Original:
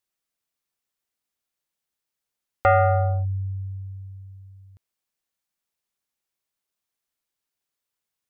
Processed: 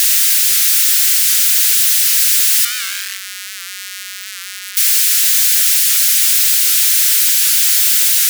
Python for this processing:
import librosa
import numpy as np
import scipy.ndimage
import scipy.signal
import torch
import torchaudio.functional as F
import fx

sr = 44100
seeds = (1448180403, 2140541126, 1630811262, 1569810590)

y = np.sign(x) * np.sqrt(np.mean(np.square(x)))
y = scipy.signal.sosfilt(scipy.signal.butter(8, 1400.0, 'highpass', fs=sr, output='sos'), y)
y = fx.high_shelf(y, sr, hz=2300.0, db=11.5)
y = fx.record_warp(y, sr, rpm=78.0, depth_cents=100.0)
y = y * librosa.db_to_amplitude(8.5)